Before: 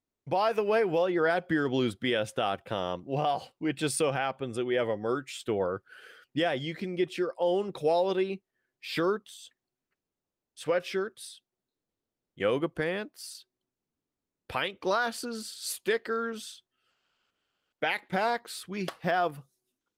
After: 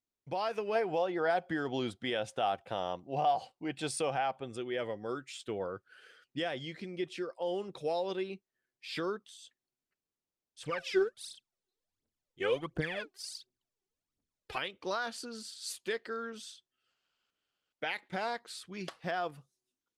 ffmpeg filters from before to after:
-filter_complex "[0:a]asettb=1/sr,asplit=3[a][b][c];[a]atrim=end=0.754[d];[b]atrim=start=0.75:end=4.48,asetpts=PTS-STARTPTS,afade=t=in:d=0.004:c=qsin,afade=t=out:st=3.726:d=0.004:c=qsin,equalizer=f=760:t=o:w=0.6:g=9[e];[c]atrim=start=4.476[f];[d][e]acrossfade=d=0.004:c1=hsin:c2=qsin[g];[g][f]acrossfade=d=0.004:c1=qsin:c2=hsin,asettb=1/sr,asplit=3[h][i][j];[h]atrim=end=10.634[k];[i]atrim=start=10.63:end=14.58,asetpts=PTS-STARTPTS,afade=t=in:d=0.004:c=qsin,afade=t=out:st=3.946:d=0.004:c=qsin,aphaser=in_gain=1:out_gain=1:delay=2.8:decay=0.77:speed=1.4:type=triangular[l];[j]atrim=start=14.576[m];[k][l]acrossfade=d=0.004:c1=hsin:c2=qsin[n];[n][m]acrossfade=d=0.004:c1=qsin:c2=hsin,lowpass=7.4k,highshelf=f=4k:g=8,volume=-8dB"

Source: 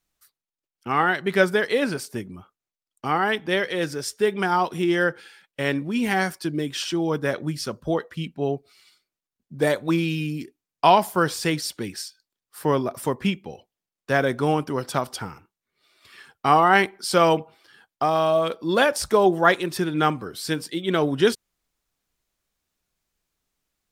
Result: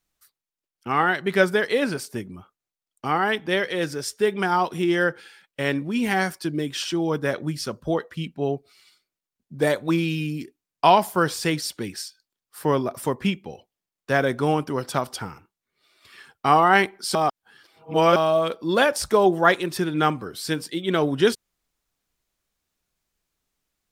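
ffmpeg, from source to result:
-filter_complex "[0:a]asplit=3[a][b][c];[a]atrim=end=17.152[d];[b]atrim=start=17.148:end=18.162,asetpts=PTS-STARTPTS,areverse[e];[c]atrim=start=18.158[f];[d][e]acrossfade=d=0.004:c1=hsin:c2=hsin[g];[g][f]acrossfade=d=0.004:c1=hsin:c2=hsin"

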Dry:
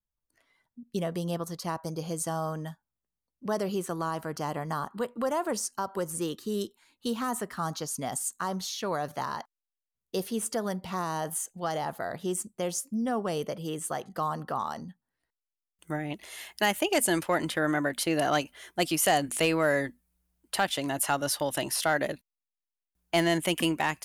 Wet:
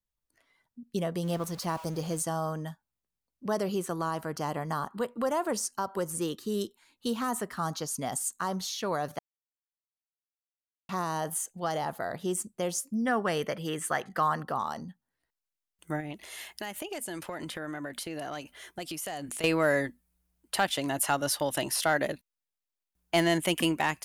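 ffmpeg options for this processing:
-filter_complex "[0:a]asettb=1/sr,asplit=3[a][b][c];[a]atrim=end=1.234[d];[b]atrim=start=1.23:end=2.22,asetpts=PTS-STARTPTS,afade=t=in:d=0.004:c=qsin,afade=t=out:st=0.986:d=0.004:c=qsin,aeval=exprs='val(0)+0.5*0.00841*sgn(val(0))':c=same[e];[c]atrim=start=2.216[f];[d][e]acrossfade=d=0.004:c1=hsin:c2=qsin[g];[g][f]acrossfade=d=0.004:c1=qsin:c2=hsin,asettb=1/sr,asplit=3[h][i][j];[h]atrim=end=13.054[k];[i]atrim=start=13.05:end=14.43,asetpts=PTS-STARTPTS,afade=t=in:d=0.004:c=qsin,afade=t=out:st=1.376:d=0.004:c=qsin,equalizer=f=1.8k:t=o:w=1.1:g=12[l];[j]atrim=start=14.426[m];[k][l]acrossfade=d=0.004:c1=hsin:c2=qsin[n];[n][m]acrossfade=d=0.004:c1=qsin:c2=hsin,asettb=1/sr,asplit=3[o][p][q];[o]atrim=end=16.004[r];[p]atrim=start=16:end=19.44,asetpts=PTS-STARTPTS,afade=t=in:d=0.004:c=qsin,afade=t=out:st=3.436:d=0.004:c=qsin,acompressor=threshold=-34dB:ratio=6:attack=3.2:release=140:knee=1:detection=peak[s];[q]atrim=start=19.436[t];[r][s]acrossfade=d=0.004:c1=hsin:c2=qsin[u];[u][t]acrossfade=d=0.004:c1=qsin:c2=hsin,asplit=3[v][w][x];[v]atrim=end=9.19,asetpts=PTS-STARTPTS,afade=t=out:st=9.186:d=0.004:c=hsin[y];[w]atrim=start=9.19:end=10.89,asetpts=PTS-STARTPTS,volume=0[z];[x]atrim=start=10.89,asetpts=PTS-STARTPTS,afade=t=in:d=0.004:c=hsin[aa];[y][z][aa]concat=n=3:v=0:a=1"

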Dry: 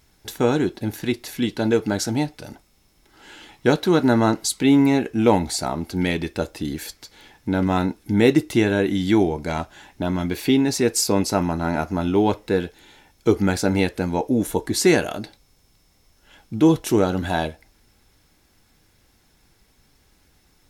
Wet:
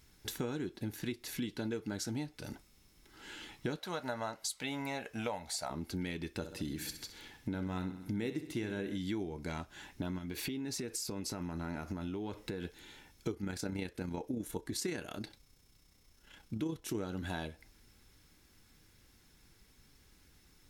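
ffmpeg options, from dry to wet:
-filter_complex "[0:a]asettb=1/sr,asplit=3[a][b][c];[a]atrim=end=3.794[d];[b]atrim=start=3.79:end=5.7,asetpts=PTS-STARTPTS,afade=t=in:d=0.004:c=qsin,afade=t=out:st=1.906:d=0.004:c=qsin,lowshelf=f=460:t=q:w=3:g=-9[e];[c]atrim=start=5.696[f];[d][e]acrossfade=d=0.004:c1=hsin:c2=qsin[g];[g][f]acrossfade=d=0.004:c1=qsin:c2=hsin,asettb=1/sr,asplit=3[h][i][j];[h]atrim=end=6.374[k];[i]atrim=start=6.37:end=8.98,asetpts=PTS-STARTPTS,afade=t=in:d=0.004:c=qsin,afade=t=out:st=2.606:d=0.004:c=qsin,aecho=1:1:65|130|195|260|325:0.251|0.126|0.0628|0.0314|0.0157,atrim=end_sample=115101[l];[j]atrim=start=8.976[m];[k][l]acrossfade=d=0.004:c1=hsin:c2=qsin[n];[n][m]acrossfade=d=0.004:c1=qsin:c2=hsin,asettb=1/sr,asplit=3[o][p][q];[o]atrim=end=10.184[r];[p]atrim=start=10.18:end=12.65,asetpts=PTS-STARTPTS,afade=t=in:d=0.004:c=qsin,afade=t=out:st=2.466:d=0.004:c=qsin,acompressor=threshold=-26dB:ratio=6:attack=3.2:release=140:knee=1:detection=peak[s];[q]atrim=start=12.646[t];[r][s]acrossfade=d=0.004:c1=hsin:c2=qsin[u];[u][t]acrossfade=d=0.004:c1=qsin:c2=hsin,asettb=1/sr,asplit=3[v][w][x];[v]atrim=end=13.314[y];[w]atrim=start=13.31:end=16.95,asetpts=PTS-STARTPTS,afade=t=in:d=0.004:c=qsin,afade=t=out:st=3.636:d=0.004:c=qsin,tremolo=f=31:d=0.462[z];[x]atrim=start=16.946[aa];[y][z]acrossfade=d=0.004:c1=hsin:c2=qsin[ab];[ab][aa]acrossfade=d=0.004:c1=qsin:c2=hsin,equalizer=f=700:w=1.5:g=-6.5,acompressor=threshold=-32dB:ratio=5,volume=-4dB"

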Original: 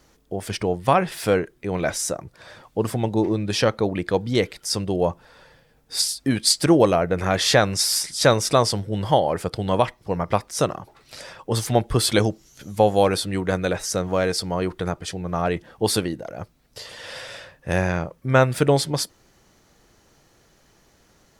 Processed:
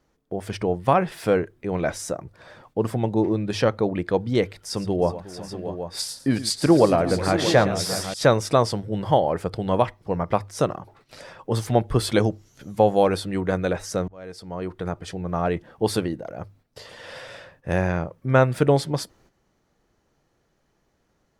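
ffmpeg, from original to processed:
-filter_complex "[0:a]asettb=1/sr,asplit=3[a][b][c];[a]atrim=end=4.554[d];[b]atrim=start=4.55:end=8.14,asetpts=PTS-STARTPTS,afade=t=in:d=0.004:c=qsin,afade=t=out:st=3.586:d=0.004:c=qsin,aecho=1:1:113|367|634|781:0.2|0.141|0.282|0.299,atrim=end_sample=158319[e];[c]atrim=start=8.136[f];[d][e]acrossfade=d=0.004:c1=hsin:c2=qsin[g];[g][f]acrossfade=d=0.004:c1=qsin:c2=hsin,asplit=2[h][i];[h]atrim=end=14.08,asetpts=PTS-STARTPTS,afade=t=out:st=14.076:d=0.004:c=hsin[j];[i]atrim=start=14.08,asetpts=PTS-STARTPTS,afade=t=in:d=1.03[k];[j][k]concat=n=2:v=0:a=1,bandreject=f=50:t=h:w=6,bandreject=f=100:t=h:w=6,agate=range=-9dB:threshold=-53dB:ratio=16:detection=peak,highshelf=f=2.5k:g=-9"

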